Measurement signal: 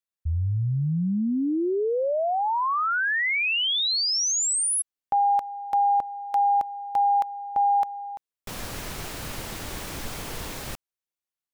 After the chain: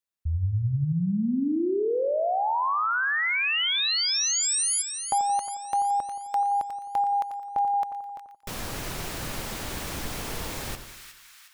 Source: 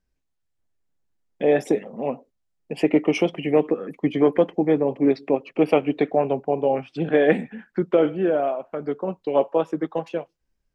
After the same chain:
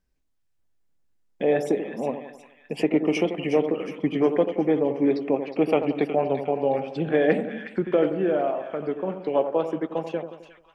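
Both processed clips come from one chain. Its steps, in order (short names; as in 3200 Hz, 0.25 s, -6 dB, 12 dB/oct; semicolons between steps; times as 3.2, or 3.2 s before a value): in parallel at -1.5 dB: compressor, threshold -29 dBFS; on the sum: split-band echo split 1300 Hz, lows 87 ms, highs 0.363 s, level -9 dB; gain -4.5 dB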